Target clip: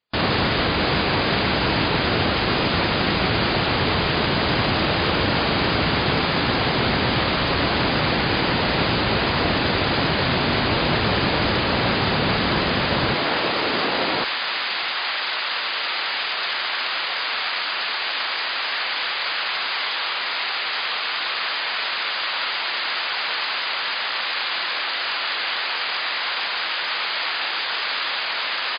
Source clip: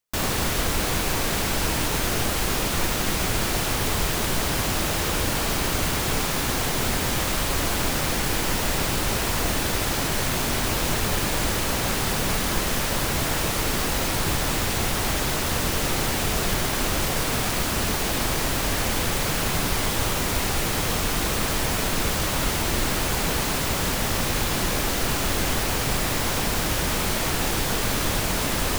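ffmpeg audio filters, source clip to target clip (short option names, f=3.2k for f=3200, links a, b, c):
-af "asetnsamples=n=441:p=0,asendcmd='13.14 highpass f 290;14.24 highpass f 1200',highpass=89,aecho=1:1:682:0.0841,volume=6.5dB" -ar 11025 -c:a libmp3lame -b:a 40k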